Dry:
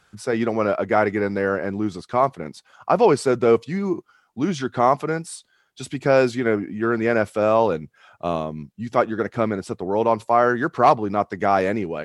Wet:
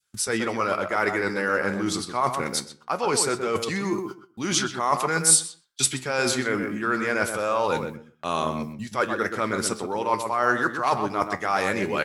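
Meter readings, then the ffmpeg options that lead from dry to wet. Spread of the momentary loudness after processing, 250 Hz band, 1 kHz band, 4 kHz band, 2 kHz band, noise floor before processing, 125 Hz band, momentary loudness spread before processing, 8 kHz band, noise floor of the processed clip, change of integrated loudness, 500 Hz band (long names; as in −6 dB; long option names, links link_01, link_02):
7 LU, −5.0 dB, −3.5 dB, +9.0 dB, +2.0 dB, −63 dBFS, −5.0 dB, 12 LU, +16.5 dB, −58 dBFS, −3.0 dB, −7.0 dB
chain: -filter_complex "[0:a]agate=range=-27dB:threshold=-43dB:ratio=16:detection=peak,areverse,acompressor=threshold=-26dB:ratio=12,areverse,asplit=2[link_01][link_02];[link_02]adelay=126,lowpass=frequency=1500:poles=1,volume=-5.5dB,asplit=2[link_03][link_04];[link_04]adelay=126,lowpass=frequency=1500:poles=1,volume=0.19,asplit=2[link_05][link_06];[link_06]adelay=126,lowpass=frequency=1500:poles=1,volume=0.19[link_07];[link_01][link_03][link_05][link_07]amix=inputs=4:normalize=0,crystalizer=i=8:c=0,adynamicequalizer=threshold=0.00891:dfrequency=1100:dqfactor=0.93:tfrequency=1100:tqfactor=0.93:attack=5:release=100:ratio=0.375:range=3:mode=boostabove:tftype=bell,flanger=delay=7.3:depth=9.3:regen=75:speed=0.24:shape=triangular,equalizer=frequency=680:width=5.5:gain=-5.5,volume=5dB"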